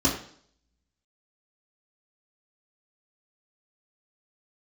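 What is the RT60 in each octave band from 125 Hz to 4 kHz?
0.60 s, 0.60 s, 0.60 s, 0.55 s, 0.55 s, 0.60 s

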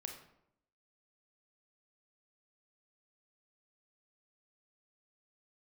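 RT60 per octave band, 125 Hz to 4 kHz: 0.85 s, 0.90 s, 0.80 s, 0.75 s, 0.60 s, 0.50 s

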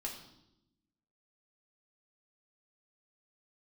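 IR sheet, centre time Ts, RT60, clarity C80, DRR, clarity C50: 27 ms, 0.85 s, 9.5 dB, -2.0 dB, 6.5 dB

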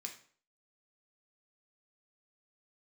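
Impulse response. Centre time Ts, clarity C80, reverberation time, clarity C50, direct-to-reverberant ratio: 16 ms, 14.0 dB, 0.50 s, 9.5 dB, 1.5 dB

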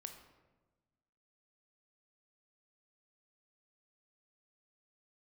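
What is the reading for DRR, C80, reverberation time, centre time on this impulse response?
5.5 dB, 9.5 dB, 1.2 s, 22 ms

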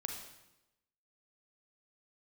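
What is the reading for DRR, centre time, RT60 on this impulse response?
2.5 dB, 36 ms, 0.95 s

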